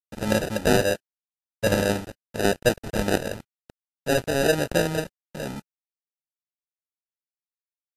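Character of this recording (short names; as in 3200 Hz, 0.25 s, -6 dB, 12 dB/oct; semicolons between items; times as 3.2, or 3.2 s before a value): aliases and images of a low sample rate 1100 Hz, jitter 0%; random-step tremolo, depth 55%; a quantiser's noise floor 6-bit, dither none; Vorbis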